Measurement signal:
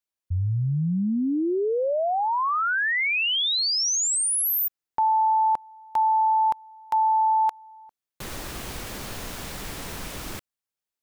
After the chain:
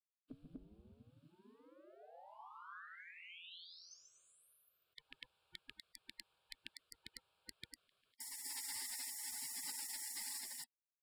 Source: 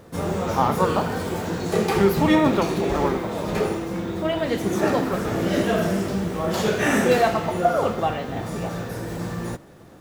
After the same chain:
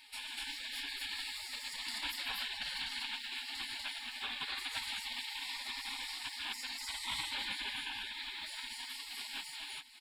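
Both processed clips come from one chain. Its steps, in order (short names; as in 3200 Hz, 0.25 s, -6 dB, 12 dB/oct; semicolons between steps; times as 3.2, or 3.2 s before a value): HPF 58 Hz 12 dB/oct; fixed phaser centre 1300 Hz, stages 8; limiter -19 dBFS; compressor 2:1, threshold -39 dBFS; air absorption 84 m; loudspeakers at several distances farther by 49 m -9 dB, 84 m 0 dB; spectral gate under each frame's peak -30 dB weak; gain +15.5 dB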